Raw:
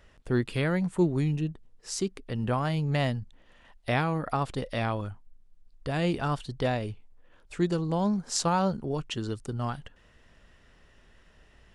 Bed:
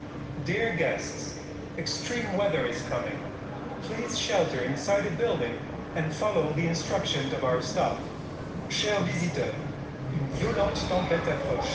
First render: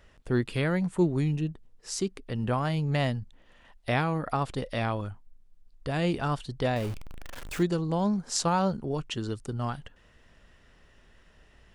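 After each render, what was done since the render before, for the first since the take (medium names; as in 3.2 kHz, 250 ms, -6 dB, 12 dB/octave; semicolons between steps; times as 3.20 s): 6.76–7.63 s: jump at every zero crossing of -34 dBFS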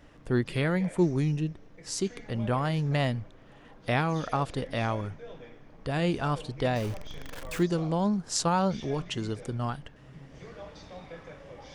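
add bed -18.5 dB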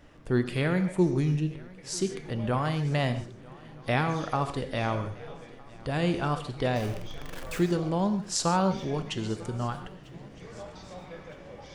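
shuffle delay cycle 1262 ms, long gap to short 3:1, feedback 55%, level -23 dB; gated-style reverb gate 170 ms flat, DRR 9 dB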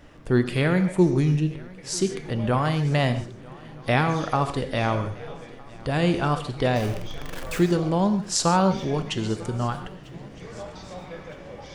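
trim +5 dB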